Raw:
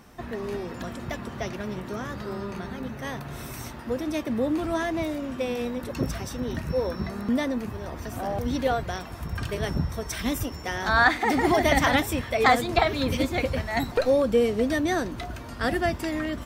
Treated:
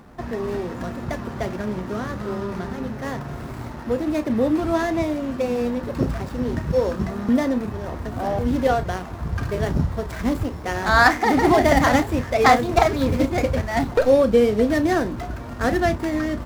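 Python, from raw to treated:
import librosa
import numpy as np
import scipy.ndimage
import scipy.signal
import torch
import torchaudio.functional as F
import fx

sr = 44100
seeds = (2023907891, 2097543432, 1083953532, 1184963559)

y = scipy.ndimage.median_filter(x, 15, mode='constant')
y = fx.doubler(y, sr, ms=33.0, db=-12.5)
y = y * 10.0 ** (5.5 / 20.0)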